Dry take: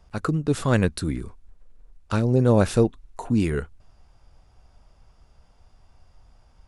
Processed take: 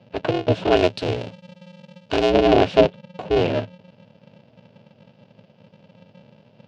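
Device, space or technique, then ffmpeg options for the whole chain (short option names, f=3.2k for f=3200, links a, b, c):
ring modulator pedal into a guitar cabinet: -filter_complex "[0:a]aeval=exprs='val(0)*sgn(sin(2*PI*180*n/s))':c=same,highpass=100,equalizer=f=110:t=q:w=4:g=8,equalizer=f=430:t=q:w=4:g=7,equalizer=f=640:t=q:w=4:g=8,equalizer=f=1.2k:t=q:w=4:g=-8,equalizer=f=1.9k:t=q:w=4:g=-5,equalizer=f=2.8k:t=q:w=4:g=7,lowpass=f=4.4k:w=0.5412,lowpass=f=4.4k:w=1.3066,asettb=1/sr,asplit=3[a][b][c];[a]atrim=end=0.764[d];[b]atrim=start=0.76:end=2.3,asetpts=PTS-STARTPTS,afade=t=in:d=0.004:c=qsin,afade=t=out:st=1.536:d=0.004:c=qsin,aemphasis=mode=production:type=50fm[e];[c]atrim=start=2.296[f];[d][e]acrossfade=d=0.004:c1=hsin:c2=qsin[g];[g][f]acrossfade=d=0.004:c1=qsin:c2=hsin"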